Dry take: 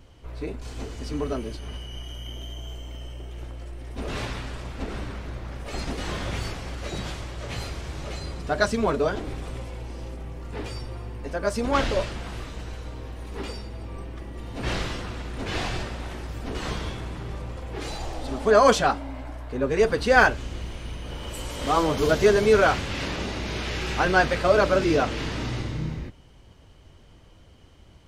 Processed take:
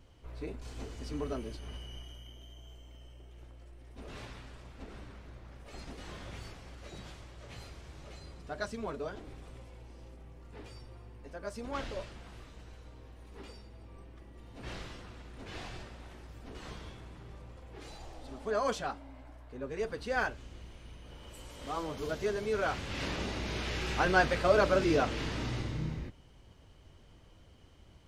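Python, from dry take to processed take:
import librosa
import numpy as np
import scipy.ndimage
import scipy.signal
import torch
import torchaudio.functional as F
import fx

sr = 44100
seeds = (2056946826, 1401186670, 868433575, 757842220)

y = fx.gain(x, sr, db=fx.line((1.9, -8.0), (2.35, -15.0), (22.52, -15.0), (23.05, -6.0)))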